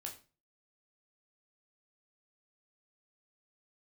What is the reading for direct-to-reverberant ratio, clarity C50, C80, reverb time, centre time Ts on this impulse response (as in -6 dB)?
0.0 dB, 11.0 dB, 16.0 dB, 0.35 s, 16 ms